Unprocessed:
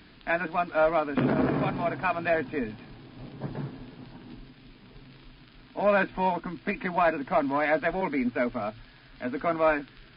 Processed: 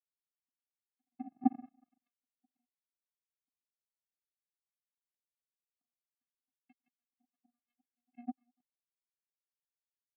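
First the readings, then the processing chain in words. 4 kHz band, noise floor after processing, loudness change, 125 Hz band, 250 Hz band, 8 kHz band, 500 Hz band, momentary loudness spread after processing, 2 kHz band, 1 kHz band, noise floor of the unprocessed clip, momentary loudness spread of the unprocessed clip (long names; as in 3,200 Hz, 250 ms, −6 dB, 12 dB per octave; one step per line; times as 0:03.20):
below −35 dB, below −85 dBFS, −11.0 dB, −30.5 dB, −12.5 dB, can't be measured, below −40 dB, 17 LU, below −40 dB, −22.0 dB, −53 dBFS, 19 LU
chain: fade-out on the ending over 2.15 s
channel vocoder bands 16, square 239 Hz
in parallel at −9.5 dB: soft clipping −27 dBFS, distortion −7 dB
on the sum: resonances in every octave C, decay 0.18 s
power curve on the samples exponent 3
gate pattern "xx...xx..." 157 BPM −12 dB
on a send: backwards echo 203 ms −23 dB
on the sum: multiband upward and downward expander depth 100%
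level +1 dB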